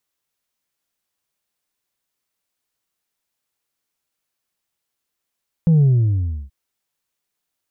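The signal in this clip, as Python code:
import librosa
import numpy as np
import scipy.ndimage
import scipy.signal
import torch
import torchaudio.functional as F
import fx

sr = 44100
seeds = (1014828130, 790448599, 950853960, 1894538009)

y = fx.sub_drop(sr, level_db=-10.5, start_hz=170.0, length_s=0.83, drive_db=2.0, fade_s=0.68, end_hz=65.0)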